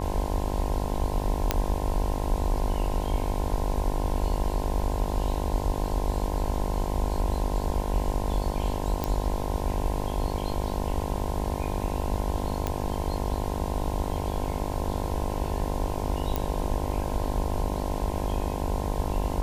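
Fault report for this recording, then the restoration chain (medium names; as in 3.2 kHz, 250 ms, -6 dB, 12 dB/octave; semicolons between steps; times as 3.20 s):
buzz 50 Hz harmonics 21 -32 dBFS
1.51 s: pop -7 dBFS
9.04 s: pop -13 dBFS
12.67 s: pop -14 dBFS
16.36 s: pop -12 dBFS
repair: de-click; de-hum 50 Hz, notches 21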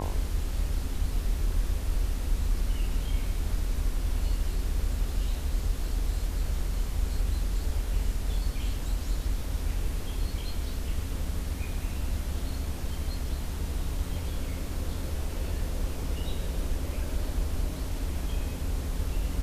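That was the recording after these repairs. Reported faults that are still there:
nothing left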